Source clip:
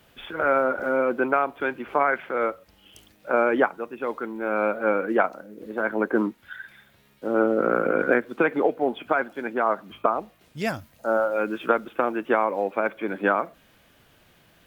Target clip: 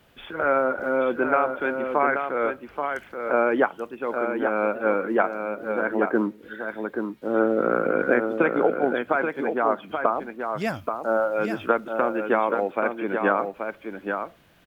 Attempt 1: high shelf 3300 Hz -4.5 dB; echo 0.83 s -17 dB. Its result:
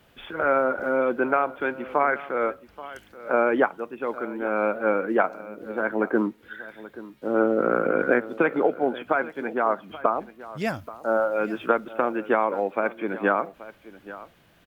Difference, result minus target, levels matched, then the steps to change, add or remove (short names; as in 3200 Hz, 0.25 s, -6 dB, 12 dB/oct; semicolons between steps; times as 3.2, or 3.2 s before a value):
echo-to-direct -11 dB
change: echo 0.83 s -6 dB